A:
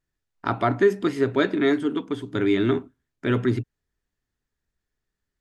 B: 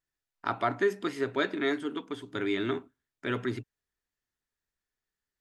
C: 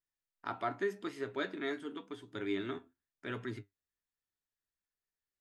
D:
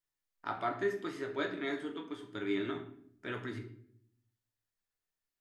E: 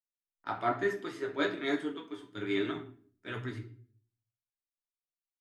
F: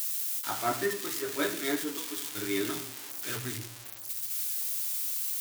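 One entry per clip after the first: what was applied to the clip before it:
low shelf 380 Hz -10.5 dB; gain -3.5 dB
flange 0.87 Hz, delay 8.8 ms, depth 3.1 ms, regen +64%; gain -4 dB
reverb RT60 0.65 s, pre-delay 6 ms, DRR 3 dB
flange 1.1 Hz, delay 5.9 ms, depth 5.3 ms, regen +50%; three-band expander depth 70%; gain +6.5 dB
switching spikes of -23.5 dBFS

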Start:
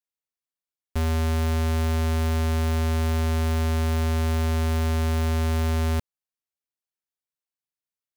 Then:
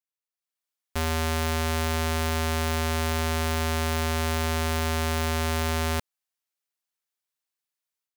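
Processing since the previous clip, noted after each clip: low shelf 410 Hz -11.5 dB; AGC gain up to 10 dB; gain -4.5 dB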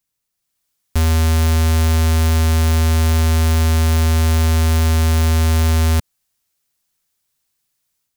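tone controls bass +12 dB, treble +5 dB; maximiser +18.5 dB; gain -7 dB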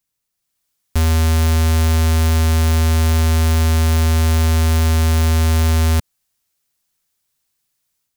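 nothing audible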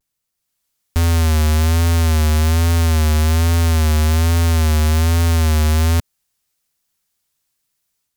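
vibrato 1.2 Hz 75 cents

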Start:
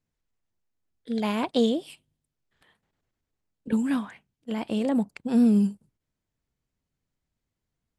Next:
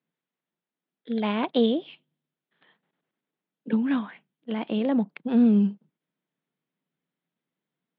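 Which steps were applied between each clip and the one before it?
Chebyshev band-pass 160–3600 Hz, order 4; gain +1.5 dB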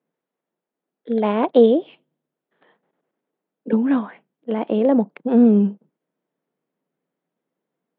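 EQ curve 130 Hz 0 dB, 500 Hz +12 dB, 4000 Hz -5 dB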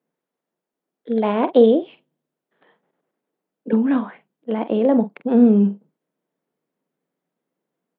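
doubler 45 ms -12.5 dB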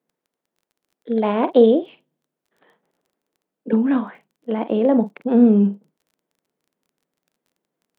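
crackle 20/s -48 dBFS

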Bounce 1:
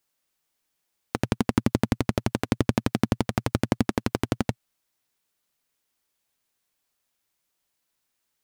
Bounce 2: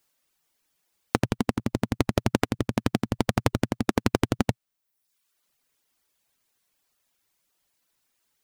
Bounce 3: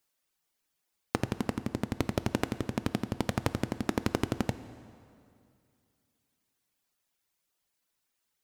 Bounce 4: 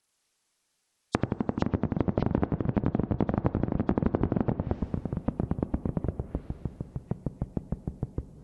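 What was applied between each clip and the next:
reverb removal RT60 0.79 s; negative-ratio compressor -25 dBFS, ratio -1; gain +3 dB
plate-style reverb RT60 2.5 s, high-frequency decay 0.8×, DRR 13 dB; gain -6.5 dB
nonlinear frequency compression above 3200 Hz 1.5:1; treble ducked by the level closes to 1000 Hz, closed at -30 dBFS; echoes that change speed 89 ms, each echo -5 st, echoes 2; gain +3 dB

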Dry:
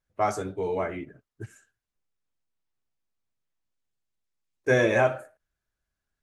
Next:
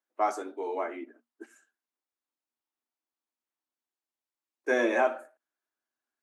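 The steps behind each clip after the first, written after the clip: rippled Chebyshev high-pass 230 Hz, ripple 6 dB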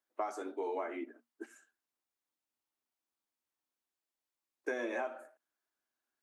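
compressor 16:1, threshold -33 dBFS, peak gain reduction 14 dB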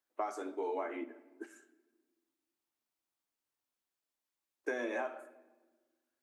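shoebox room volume 1000 m³, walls mixed, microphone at 0.33 m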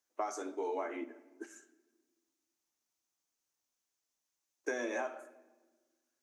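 bell 6200 Hz +11.5 dB 0.53 oct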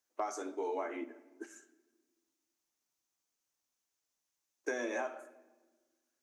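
hard clip -24 dBFS, distortion -40 dB

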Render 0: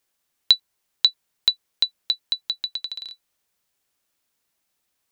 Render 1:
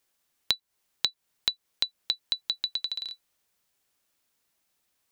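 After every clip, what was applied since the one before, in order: compressor 6:1, threshold -24 dBFS, peak gain reduction 13.5 dB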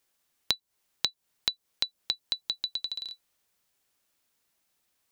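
dynamic EQ 1900 Hz, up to -6 dB, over -44 dBFS, Q 0.8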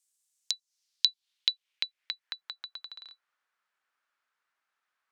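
band-pass sweep 8000 Hz -> 1400 Hz, 0.28–2.55; gain +5.5 dB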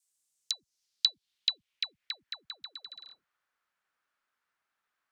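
low shelf 400 Hz +7.5 dB; dispersion lows, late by 0.134 s, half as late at 540 Hz; gain -1.5 dB

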